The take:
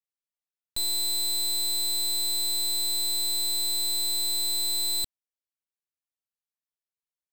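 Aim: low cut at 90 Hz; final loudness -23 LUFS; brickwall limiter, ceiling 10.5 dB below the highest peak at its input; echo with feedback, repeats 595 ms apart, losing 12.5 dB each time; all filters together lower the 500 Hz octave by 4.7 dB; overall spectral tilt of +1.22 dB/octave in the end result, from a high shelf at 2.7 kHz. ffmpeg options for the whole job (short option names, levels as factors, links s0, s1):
-af "highpass=90,equalizer=f=500:t=o:g=-8.5,highshelf=f=2700:g=-6.5,alimiter=level_in=4.22:limit=0.0631:level=0:latency=1,volume=0.237,aecho=1:1:595|1190|1785:0.237|0.0569|0.0137,volume=7.08"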